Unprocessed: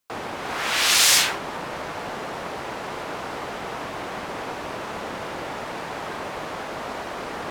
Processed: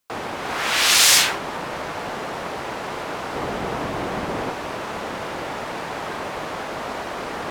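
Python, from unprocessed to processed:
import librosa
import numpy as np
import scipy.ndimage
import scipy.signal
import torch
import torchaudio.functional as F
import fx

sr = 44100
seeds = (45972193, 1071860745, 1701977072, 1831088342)

y = fx.low_shelf(x, sr, hz=490.0, db=8.0, at=(3.35, 4.5))
y = F.gain(torch.from_numpy(y), 2.5).numpy()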